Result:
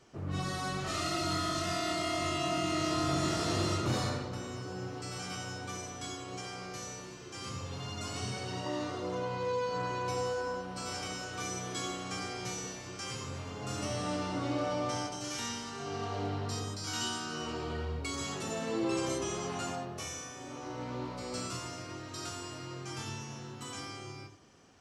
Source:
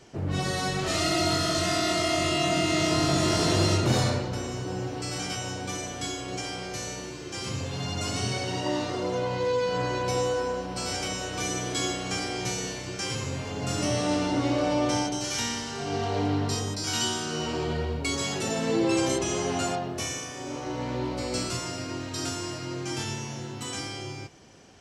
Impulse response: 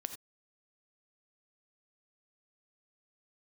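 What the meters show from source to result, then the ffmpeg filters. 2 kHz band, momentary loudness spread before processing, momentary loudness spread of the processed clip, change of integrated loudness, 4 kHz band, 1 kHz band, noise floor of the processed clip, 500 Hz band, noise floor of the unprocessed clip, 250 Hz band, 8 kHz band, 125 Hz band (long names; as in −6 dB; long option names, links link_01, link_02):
−7.5 dB, 10 LU, 10 LU, −8.0 dB, −8.5 dB, −5.5 dB, −46 dBFS, −8.0 dB, −38 dBFS, −8.5 dB, −8.0 dB, −8.0 dB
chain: -filter_complex "[0:a]equalizer=frequency=1200:width=4:gain=7[link_01];[1:a]atrim=start_sample=2205[link_02];[link_01][link_02]afir=irnorm=-1:irlink=0,volume=-7dB"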